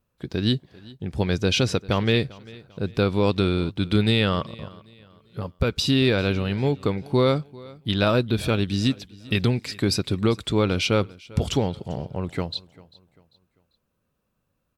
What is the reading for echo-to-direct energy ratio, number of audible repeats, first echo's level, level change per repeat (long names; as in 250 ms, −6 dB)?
−21.5 dB, 2, −22.0 dB, −8.5 dB